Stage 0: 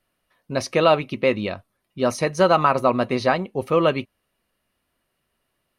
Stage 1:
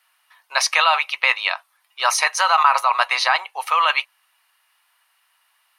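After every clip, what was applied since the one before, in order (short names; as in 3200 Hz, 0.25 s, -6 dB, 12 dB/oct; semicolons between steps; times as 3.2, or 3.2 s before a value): elliptic high-pass 850 Hz, stop band 80 dB; in parallel at +1.5 dB: negative-ratio compressor -28 dBFS, ratio -0.5; on the sum: gain +4 dB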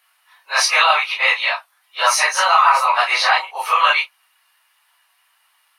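phase scrambler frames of 0.1 s; gain +3 dB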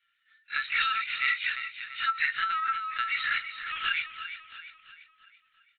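rippled Chebyshev high-pass 1300 Hz, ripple 6 dB; feedback echo 0.341 s, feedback 47%, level -10 dB; LPC vocoder at 8 kHz pitch kept; gain -7 dB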